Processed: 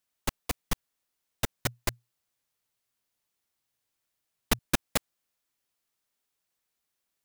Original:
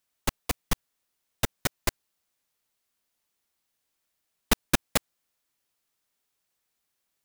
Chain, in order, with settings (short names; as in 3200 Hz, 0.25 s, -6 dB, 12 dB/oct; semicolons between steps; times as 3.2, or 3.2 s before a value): 1.55–4.59 bell 120 Hz +10 dB 0.22 oct; gain -3 dB